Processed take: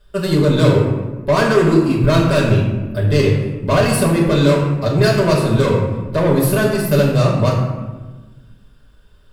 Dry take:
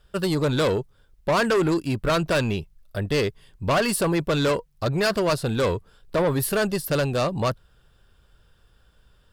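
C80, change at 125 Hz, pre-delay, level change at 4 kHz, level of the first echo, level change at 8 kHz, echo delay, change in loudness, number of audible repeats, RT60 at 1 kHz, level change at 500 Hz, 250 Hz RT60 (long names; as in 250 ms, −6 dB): 5.0 dB, +13.0 dB, 5 ms, +4.5 dB, no echo audible, +4.0 dB, no echo audible, +8.5 dB, no echo audible, 1.2 s, +7.5 dB, 1.9 s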